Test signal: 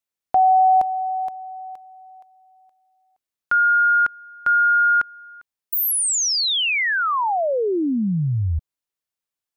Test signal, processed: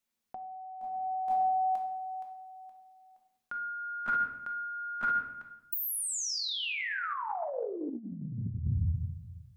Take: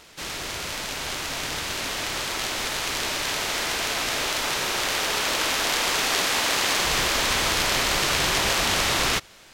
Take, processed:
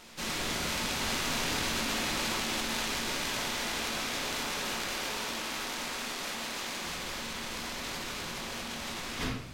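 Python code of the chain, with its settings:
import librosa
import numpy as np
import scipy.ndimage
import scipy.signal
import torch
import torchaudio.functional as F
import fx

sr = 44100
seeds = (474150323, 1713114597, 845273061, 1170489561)

y = fx.peak_eq(x, sr, hz=230.0, db=9.0, octaves=0.41)
y = fx.room_shoebox(y, sr, seeds[0], volume_m3=230.0, walls='mixed', distance_m=0.96)
y = fx.over_compress(y, sr, threshold_db=-27.0, ratio=-1.0)
y = F.gain(torch.from_numpy(y), -8.0).numpy()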